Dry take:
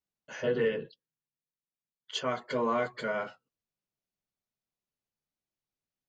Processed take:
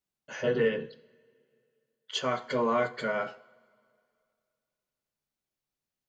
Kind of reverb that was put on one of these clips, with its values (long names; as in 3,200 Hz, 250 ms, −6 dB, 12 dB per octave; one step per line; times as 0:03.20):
coupled-rooms reverb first 0.56 s, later 2.4 s, from −18 dB, DRR 12.5 dB
level +2 dB